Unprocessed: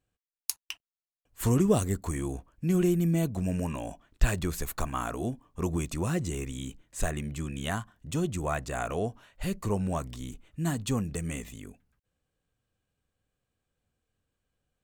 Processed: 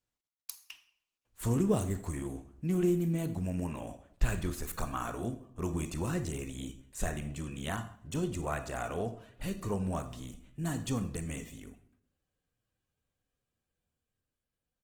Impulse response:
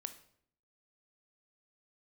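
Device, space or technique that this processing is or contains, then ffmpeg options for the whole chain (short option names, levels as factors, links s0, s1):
speakerphone in a meeting room: -filter_complex "[1:a]atrim=start_sample=2205[s0];[0:a][s0]afir=irnorm=-1:irlink=0,asplit=2[s1][s2];[s2]adelay=80,highpass=300,lowpass=3400,asoftclip=type=hard:threshold=0.0841,volume=0.0794[s3];[s1][s3]amix=inputs=2:normalize=0,dynaudnorm=f=110:g=21:m=1.58,volume=0.562" -ar 48000 -c:a libopus -b:a 16k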